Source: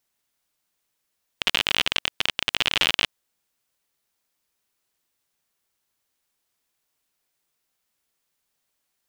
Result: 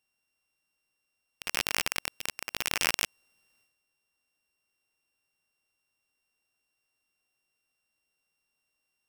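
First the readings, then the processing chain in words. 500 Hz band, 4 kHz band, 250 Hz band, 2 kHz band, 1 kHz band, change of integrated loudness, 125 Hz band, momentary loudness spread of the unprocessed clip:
−6.0 dB, −11.5 dB, −6.5 dB, −7.0 dB, −5.0 dB, −8.0 dB, −6.5 dB, 5 LU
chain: samples sorted by size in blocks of 16 samples
transient designer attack −12 dB, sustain +10 dB
level −4 dB

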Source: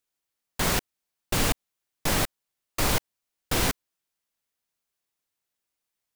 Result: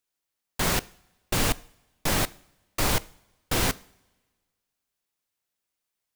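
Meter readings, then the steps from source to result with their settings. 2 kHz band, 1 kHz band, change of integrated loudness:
0.0 dB, 0.0 dB, 0.0 dB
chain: coupled-rooms reverb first 0.54 s, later 1.6 s, from −17 dB, DRR 18.5 dB

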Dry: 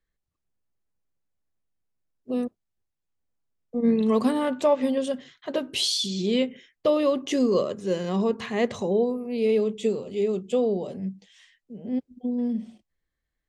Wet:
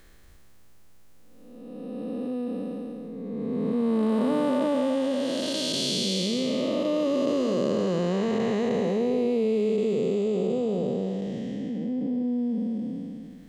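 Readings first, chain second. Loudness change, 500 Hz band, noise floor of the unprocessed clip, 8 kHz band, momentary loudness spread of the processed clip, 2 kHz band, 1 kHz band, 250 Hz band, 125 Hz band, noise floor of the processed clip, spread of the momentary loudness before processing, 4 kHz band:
−1.0 dB, −1.0 dB, −82 dBFS, 0.0 dB, 10 LU, −2.0 dB, −2.0 dB, +1.0 dB, +3.0 dB, −49 dBFS, 9 LU, −0.5 dB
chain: spectrum smeared in time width 734 ms
envelope flattener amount 50%
level +2.5 dB

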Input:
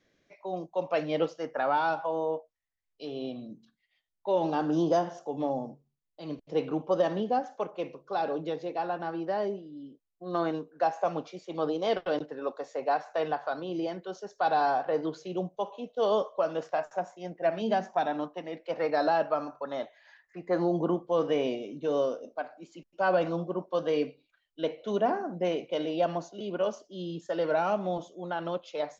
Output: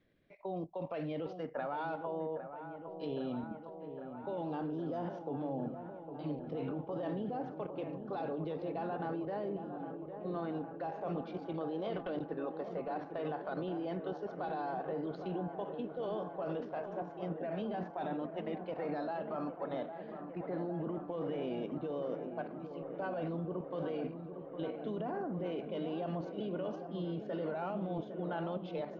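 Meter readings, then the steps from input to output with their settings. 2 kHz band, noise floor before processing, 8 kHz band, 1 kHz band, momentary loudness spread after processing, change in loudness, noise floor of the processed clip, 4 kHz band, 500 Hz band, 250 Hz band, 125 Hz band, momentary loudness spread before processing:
−11.5 dB, −80 dBFS, can't be measured, −11.0 dB, 5 LU, −9.0 dB, −48 dBFS, −12.5 dB, −9.0 dB, −5.0 dB, −1.5 dB, 12 LU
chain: low-pass filter 3,900 Hz 24 dB per octave
low-shelf EQ 300 Hz +9.5 dB
brickwall limiter −24 dBFS, peak gain reduction 11.5 dB
output level in coarse steps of 9 dB
delay with a low-pass on its return 808 ms, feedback 78%, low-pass 1,700 Hz, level −9 dB
level −2 dB

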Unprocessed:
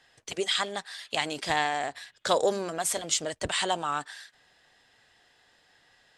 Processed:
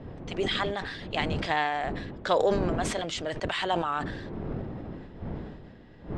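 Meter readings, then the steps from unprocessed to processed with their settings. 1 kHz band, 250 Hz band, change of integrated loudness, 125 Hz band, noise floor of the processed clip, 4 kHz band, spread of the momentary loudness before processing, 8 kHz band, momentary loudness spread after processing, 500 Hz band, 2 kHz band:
+0.5 dB, +6.5 dB, −1.0 dB, +11.0 dB, −48 dBFS, −3.5 dB, 10 LU, −12.0 dB, 15 LU, +2.0 dB, 0.0 dB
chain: wind on the microphone 300 Hz −38 dBFS
low-pass filter 3,100 Hz 12 dB per octave
level that may fall only so fast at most 45 dB per second

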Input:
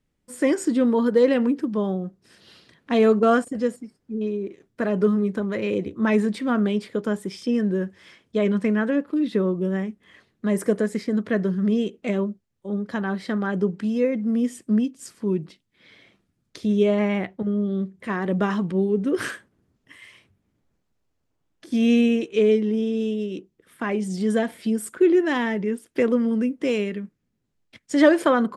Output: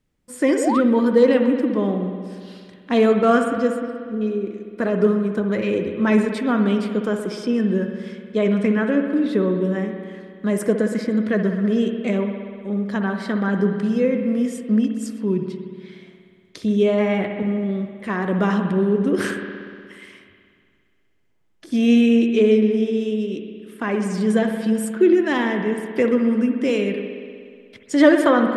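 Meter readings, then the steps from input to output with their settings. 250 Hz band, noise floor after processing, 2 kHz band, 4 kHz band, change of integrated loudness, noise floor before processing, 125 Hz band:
+3.0 dB, −58 dBFS, +3.0 dB, +3.0 dB, +3.0 dB, −74 dBFS, +3.0 dB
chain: spring reverb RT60 2.1 s, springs 60 ms, chirp 70 ms, DRR 5 dB
sound drawn into the spectrogram rise, 0:00.57–0:00.81, 400–1,500 Hz −25 dBFS
level +2 dB

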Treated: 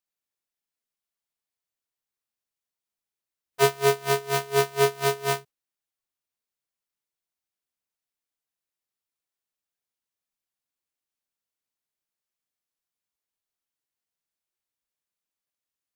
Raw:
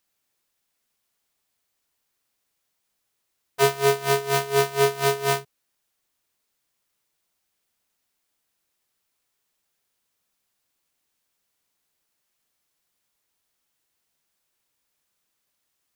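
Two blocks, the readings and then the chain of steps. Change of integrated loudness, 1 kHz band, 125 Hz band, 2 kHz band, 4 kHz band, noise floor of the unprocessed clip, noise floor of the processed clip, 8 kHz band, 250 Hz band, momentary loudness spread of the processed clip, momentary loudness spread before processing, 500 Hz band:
−2.0 dB, −2.0 dB, −2.0 dB, −2.0 dB, −2.0 dB, −77 dBFS, below −85 dBFS, −2.0 dB, −2.0 dB, 7 LU, 5 LU, −1.5 dB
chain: noise reduction from a noise print of the clip's start 7 dB
expander for the loud parts 1.5 to 1, over −30 dBFS

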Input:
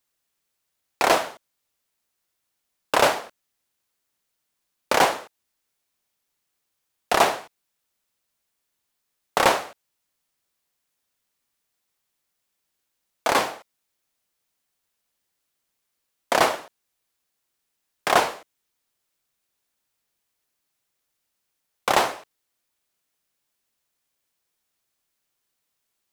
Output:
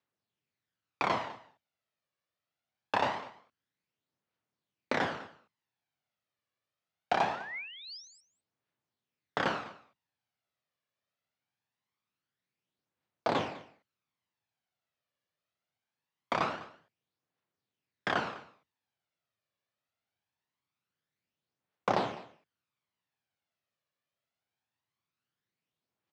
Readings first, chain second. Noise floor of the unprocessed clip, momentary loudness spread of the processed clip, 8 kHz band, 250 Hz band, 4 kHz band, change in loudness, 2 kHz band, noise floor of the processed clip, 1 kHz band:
−78 dBFS, 16 LU, −23.5 dB, −6.0 dB, −13.5 dB, −11.5 dB, −10.5 dB, below −85 dBFS, −10.5 dB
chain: sub-octave generator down 1 octave, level −1 dB
high-pass filter 96 Hz 24 dB per octave
downward compressor 5 to 1, threshold −18 dBFS, peak gain reduction 6 dB
sound drawn into the spectrogram rise, 0:07.30–0:08.21, 1,200–8,400 Hz −35 dBFS
phase shifter 0.23 Hz, delay 1.8 ms, feedback 46%
high-frequency loss of the air 190 metres
on a send: single-tap delay 202 ms −19 dB
on the sum: level −6.5 dB

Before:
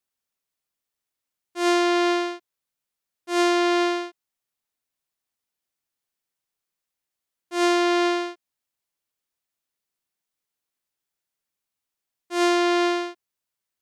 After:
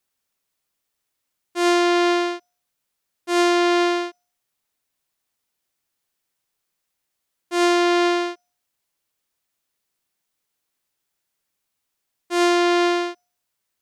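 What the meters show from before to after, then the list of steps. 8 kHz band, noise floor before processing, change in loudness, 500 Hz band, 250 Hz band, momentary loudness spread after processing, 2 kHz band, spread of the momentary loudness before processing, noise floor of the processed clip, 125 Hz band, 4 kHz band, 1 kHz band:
+3.0 dB, below −85 dBFS, +2.5 dB, +3.0 dB, +3.0 dB, 12 LU, +3.0 dB, 14 LU, −79 dBFS, can't be measured, +3.0 dB, +3.0 dB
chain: hum removal 237.7 Hz, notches 30
downward compressor 1.5 to 1, threshold −30 dBFS, peak gain reduction 5 dB
level +7 dB

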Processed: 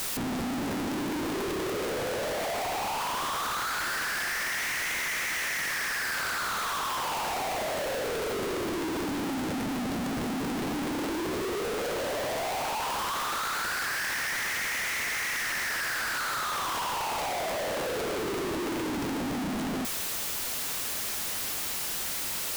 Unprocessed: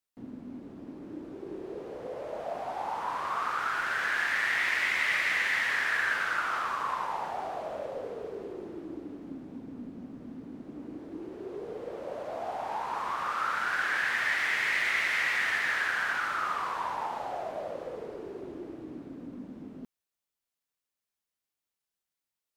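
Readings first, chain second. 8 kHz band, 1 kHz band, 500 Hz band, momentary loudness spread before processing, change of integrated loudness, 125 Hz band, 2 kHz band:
+15.0 dB, +1.5 dB, +6.0 dB, 17 LU, 0.0 dB, +11.5 dB, −2.0 dB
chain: sign of each sample alone
level +2.5 dB

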